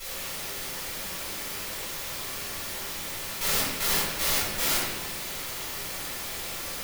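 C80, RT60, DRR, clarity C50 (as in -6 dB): 2.5 dB, 1.3 s, -12.5 dB, -0.5 dB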